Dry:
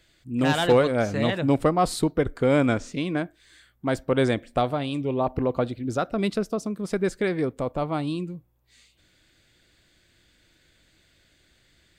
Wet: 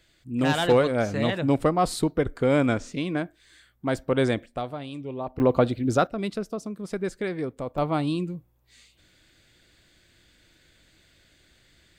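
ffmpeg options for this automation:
-af "asetnsamples=n=441:p=0,asendcmd='4.46 volume volume -8dB;5.4 volume volume 4.5dB;6.07 volume volume -4.5dB;7.78 volume volume 2dB',volume=0.891"

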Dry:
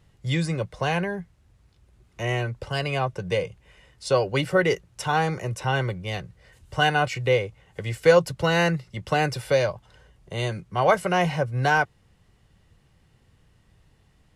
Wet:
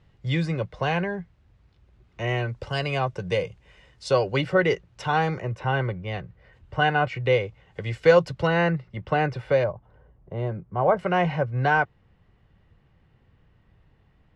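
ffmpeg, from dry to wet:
-af "asetnsamples=n=441:p=0,asendcmd='2.49 lowpass f 6400;4.36 lowpass f 4000;5.4 lowpass f 2400;7.26 lowpass f 4200;8.47 lowpass f 2200;9.64 lowpass f 1000;10.99 lowpass f 2500',lowpass=3900"

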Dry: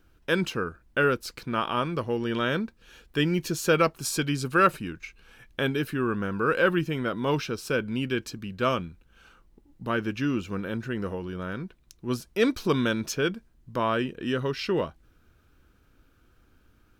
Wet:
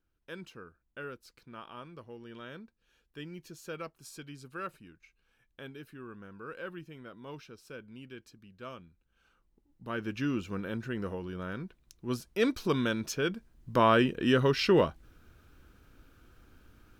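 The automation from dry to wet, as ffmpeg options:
-af "volume=1.41,afade=t=in:st=8.79:d=1.04:silence=0.398107,afade=t=in:st=9.83:d=0.37:silence=0.473151,afade=t=in:st=13.26:d=0.52:silence=0.421697"

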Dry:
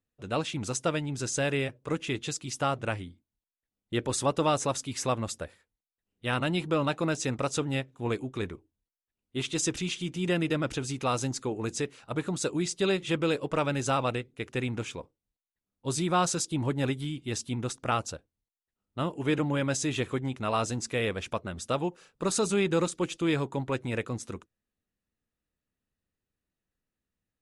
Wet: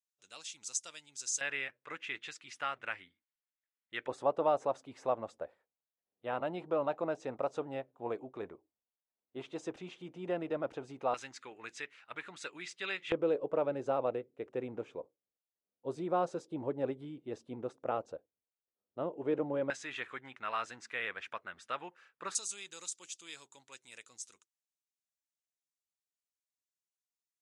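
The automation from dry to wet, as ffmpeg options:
-af "asetnsamples=n=441:p=0,asendcmd='1.41 bandpass f 1900;4.08 bandpass f 670;11.14 bandpass f 2000;13.12 bandpass f 530;19.7 bandpass f 1700;22.35 bandpass f 6800',bandpass=f=6600:t=q:w=1.9:csg=0"

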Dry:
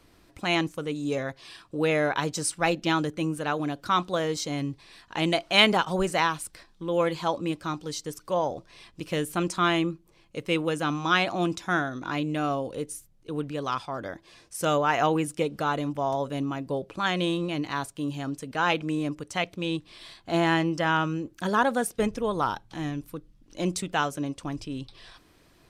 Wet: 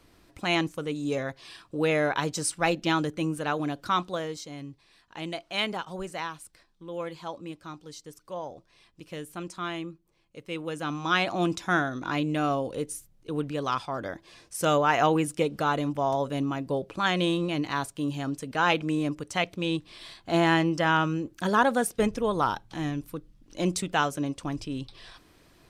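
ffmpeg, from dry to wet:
-af "volume=3.35,afade=t=out:st=3.81:d=0.65:silence=0.334965,afade=t=in:st=10.48:d=1.08:silence=0.281838"

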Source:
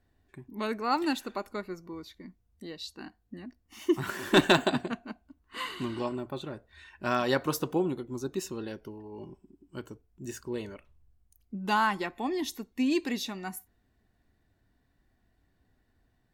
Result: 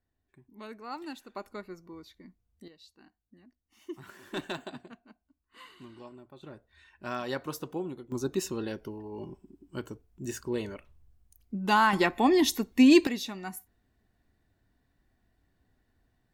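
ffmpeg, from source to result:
-af "asetnsamples=n=441:p=0,asendcmd='1.36 volume volume -5dB;2.68 volume volume -15dB;6.43 volume volume -7dB;8.12 volume volume 3dB;11.93 volume volume 9dB;13.07 volume volume -1dB',volume=0.251"

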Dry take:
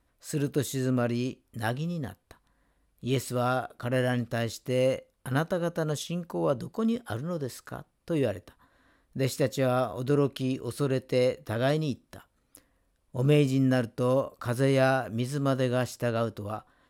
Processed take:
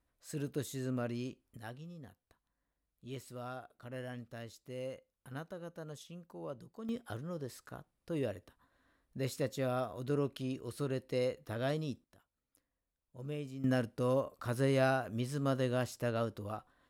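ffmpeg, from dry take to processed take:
-af "asetnsamples=n=441:p=0,asendcmd='1.57 volume volume -17dB;6.89 volume volume -9dB;12.04 volume volume -19dB;13.64 volume volume -6.5dB',volume=0.316"

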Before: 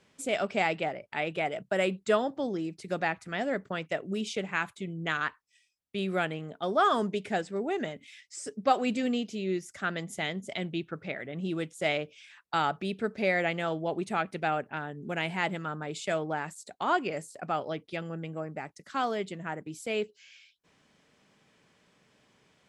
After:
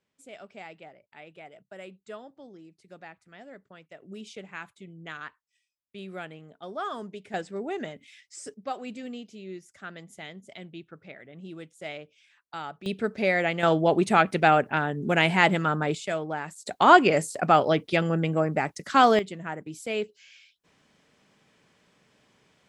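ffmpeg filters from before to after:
-af "asetnsamples=n=441:p=0,asendcmd='4.02 volume volume -9dB;7.34 volume volume -1.5dB;8.54 volume volume -9dB;12.86 volume volume 3dB;13.63 volume volume 10dB;15.95 volume volume 0.5dB;16.66 volume volume 12dB;19.19 volume volume 1.5dB',volume=0.158"

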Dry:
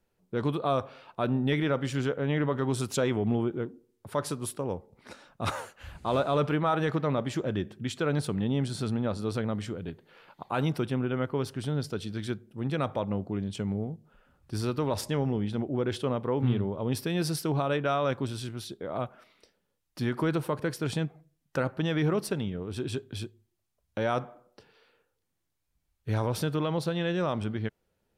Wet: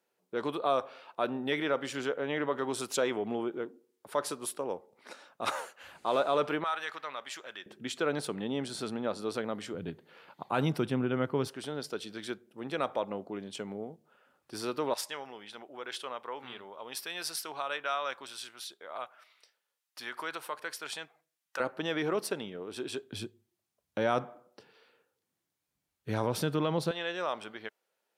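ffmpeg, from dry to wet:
-af "asetnsamples=n=441:p=0,asendcmd='6.64 highpass f 1300;7.66 highpass f 320;9.74 highpass f 140;11.48 highpass f 370;14.94 highpass f 990;21.6 highpass f 370;23.12 highpass f 160;26.91 highpass f 620',highpass=380"

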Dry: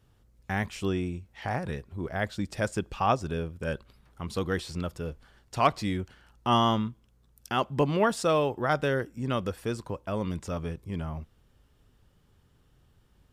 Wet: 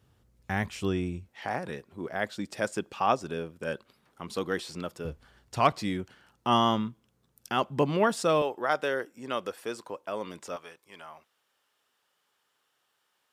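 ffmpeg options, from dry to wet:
-af "asetnsamples=n=441:p=0,asendcmd='1.29 highpass f 220;5.05 highpass f 53;5.72 highpass f 140;8.42 highpass f 390;10.56 highpass f 840',highpass=65"

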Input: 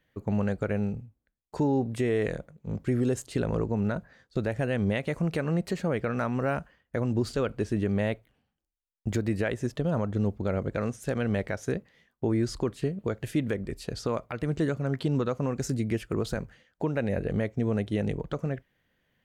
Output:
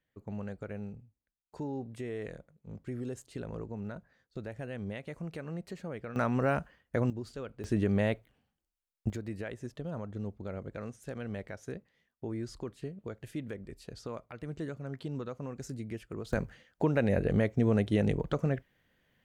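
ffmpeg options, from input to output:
-af "asetnsamples=n=441:p=0,asendcmd='6.16 volume volume -0.5dB;7.1 volume volume -13dB;7.64 volume volume -1dB;9.1 volume volume -11dB;16.33 volume volume 1dB',volume=0.251"

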